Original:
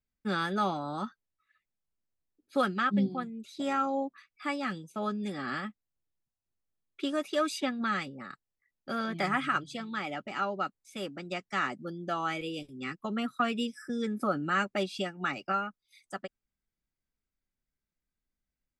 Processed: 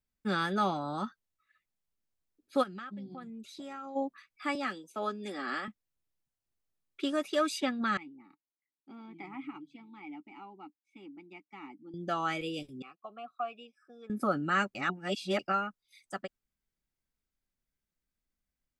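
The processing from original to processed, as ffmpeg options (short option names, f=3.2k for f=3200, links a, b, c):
-filter_complex "[0:a]asplit=3[a][b][c];[a]afade=t=out:st=2.62:d=0.02[d];[b]acompressor=threshold=-41dB:ratio=6:attack=3.2:release=140:knee=1:detection=peak,afade=t=in:st=2.62:d=0.02,afade=t=out:st=3.95:d=0.02[e];[c]afade=t=in:st=3.95:d=0.02[f];[d][e][f]amix=inputs=3:normalize=0,asettb=1/sr,asplit=3[g][h][i];[g]atrim=end=4.554[j];[h]atrim=start=4.55:end=5.68,asetpts=PTS-STARTPTS,afade=t=in:d=0.004:c=qsin,afade=t=out:st=1.126:d=0.004:c=qsin,highpass=f=260:w=0.5412,highpass=f=260:w=1.3066[k];[i]atrim=start=5.676[l];[j][k]acrossfade=d=0.004:c1=hsin:c2=qsin[m];[m][l]acrossfade=d=0.004:c1=qsin:c2=hsin,asettb=1/sr,asplit=3[n][o][p];[n]atrim=end=7.974[q];[o]atrim=start=7.97:end=11.94,asetpts=PTS-STARTPTS,afade=t=in:d=0.004:c=qsin,afade=t=out:st=3.966:d=0.004:c=qsin,asplit=3[r][s][t];[r]bandpass=f=300:t=q:w=8,volume=0dB[u];[s]bandpass=f=870:t=q:w=8,volume=-6dB[v];[t]bandpass=f=2.24k:t=q:w=8,volume=-9dB[w];[u][v][w]amix=inputs=3:normalize=0[x];[p]atrim=start=11.936[y];[q][x]acrossfade=d=0.004:c1=hsin:c2=qsin[z];[z][y]acrossfade=d=0.004:c1=qsin:c2=hsin,asettb=1/sr,asplit=3[aa][ab][ac];[aa]atrim=end=12.824[ad];[ab]atrim=start=12.82:end=14.1,asetpts=PTS-STARTPTS,afade=t=in:d=0.004:c=qsin,afade=t=out:st=1.276:d=0.004:c=qsin,asplit=3[ae][af][ag];[ae]bandpass=f=730:t=q:w=8,volume=0dB[ah];[af]bandpass=f=1.09k:t=q:w=8,volume=-6dB[ai];[ag]bandpass=f=2.44k:t=q:w=8,volume=-9dB[aj];[ah][ai][aj]amix=inputs=3:normalize=0[ak];[ac]atrim=start=14.096[al];[ad][ak]acrossfade=d=0.004:c1=hsin:c2=qsin[am];[am][al]acrossfade=d=0.004:c1=qsin:c2=hsin,asplit=3[an][ao][ap];[an]atrim=end=14.752[aq];[ao]atrim=start=14.748:end=15.392,asetpts=PTS-STARTPTS,areverse[ar];[ap]atrim=start=15.388[as];[aq][ar]acrossfade=d=0.004:c1=hsin:c2=hsin[at];[at][as]acrossfade=d=0.004:c1=hsin:c2=hsin"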